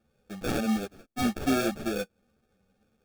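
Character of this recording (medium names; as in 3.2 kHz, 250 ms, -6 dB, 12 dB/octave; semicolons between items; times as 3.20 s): aliases and images of a low sample rate 1 kHz, jitter 0%; a shimmering, thickened sound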